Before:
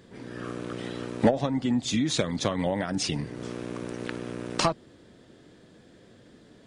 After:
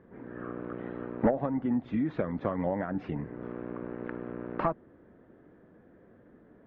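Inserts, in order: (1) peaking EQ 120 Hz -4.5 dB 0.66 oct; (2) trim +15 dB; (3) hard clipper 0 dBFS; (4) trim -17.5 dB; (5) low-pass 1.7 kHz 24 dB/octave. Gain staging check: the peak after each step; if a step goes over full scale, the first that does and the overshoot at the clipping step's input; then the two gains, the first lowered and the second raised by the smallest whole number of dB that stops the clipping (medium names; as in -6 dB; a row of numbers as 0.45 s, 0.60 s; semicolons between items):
-10.0 dBFS, +5.0 dBFS, 0.0 dBFS, -17.5 dBFS, -16.0 dBFS; step 2, 5.0 dB; step 2 +10 dB, step 4 -12.5 dB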